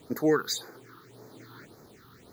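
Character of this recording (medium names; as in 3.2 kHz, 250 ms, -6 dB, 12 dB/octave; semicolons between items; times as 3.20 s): a quantiser's noise floor 10-bit, dither none; phasing stages 6, 1.8 Hz, lowest notch 570–3000 Hz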